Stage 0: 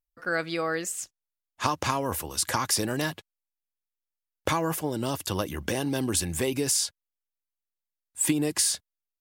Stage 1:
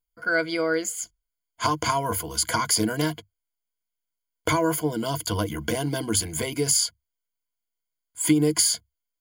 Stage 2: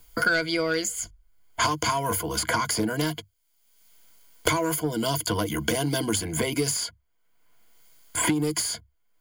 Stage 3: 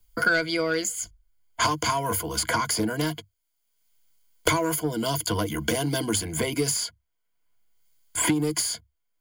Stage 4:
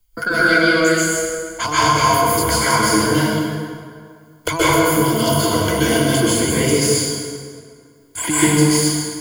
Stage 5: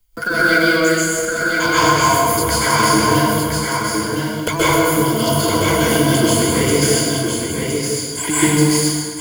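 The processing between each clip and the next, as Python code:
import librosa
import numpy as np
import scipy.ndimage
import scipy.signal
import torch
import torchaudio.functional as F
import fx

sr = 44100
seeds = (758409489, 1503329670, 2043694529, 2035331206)

y1 = fx.ripple_eq(x, sr, per_octave=1.8, db=16)
y2 = 10.0 ** (-15.5 / 20.0) * np.tanh(y1 / 10.0 ** (-15.5 / 20.0))
y2 = fx.band_squash(y2, sr, depth_pct=100)
y3 = fx.band_widen(y2, sr, depth_pct=40)
y4 = fx.rev_plate(y3, sr, seeds[0], rt60_s=2.1, hf_ratio=0.65, predelay_ms=115, drr_db=-10.0)
y5 = fx.block_float(y4, sr, bits=5)
y5 = y5 + 10.0 ** (-4.5 / 20.0) * np.pad(y5, (int(1014 * sr / 1000.0), 0))[:len(y5)]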